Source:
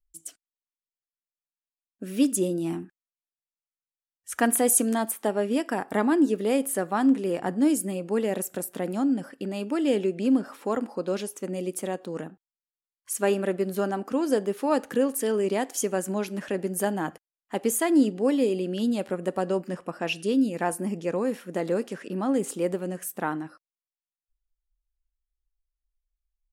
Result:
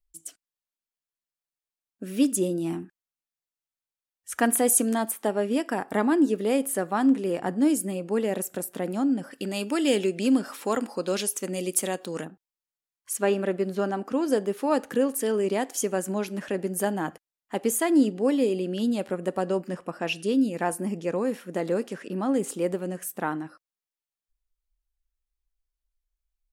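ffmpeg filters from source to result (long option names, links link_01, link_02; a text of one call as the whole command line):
ffmpeg -i in.wav -filter_complex "[0:a]asettb=1/sr,asplit=3[link_01][link_02][link_03];[link_01]atrim=end=9.314[link_04];[link_02]atrim=start=9.31:end=12.25,asetpts=PTS-STARTPTS,afade=type=in:duration=0.004:curve=qsin,afade=type=out:start_time=2.936:duration=0.004:curve=qsin,highshelf=frequency=2000:gain=11[link_05];[link_03]atrim=start=12.246[link_06];[link_04][link_05]acrossfade=duration=0.004:curve1=hsin:curve2=qsin[link_07];[link_07][link_06]acrossfade=duration=0.004:curve1=qsin:curve2=hsin,asettb=1/sr,asplit=3[link_08][link_09][link_10];[link_08]atrim=end=13.174[link_11];[link_09]atrim=start=13.17:end=14.28,asetpts=PTS-STARTPTS,afade=type=in:duration=0.004:curve=qsin,afade=type=out:start_time=1.106:duration=0.004:curve=qsin,acrossover=split=6400[link_12][link_13];[link_13]acompressor=threshold=-57dB:ratio=4:attack=1:release=60[link_14];[link_12][link_14]amix=inputs=2:normalize=0[link_15];[link_10]atrim=start=14.276[link_16];[link_11][link_15]acrossfade=duration=0.004:curve1=hsin:curve2=qsin[link_17];[link_17][link_16]acrossfade=duration=0.004:curve1=qsin:curve2=hsin" out.wav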